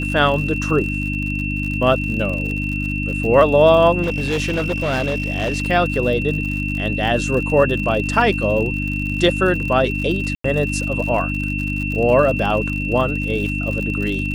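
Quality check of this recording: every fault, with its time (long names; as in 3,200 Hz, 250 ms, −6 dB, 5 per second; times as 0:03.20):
surface crackle 70 per second −26 dBFS
mains hum 50 Hz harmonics 6 −24 dBFS
whistle 2,700 Hz −25 dBFS
0:04.02–0:05.62: clipping −16 dBFS
0:10.35–0:10.44: drop-out 94 ms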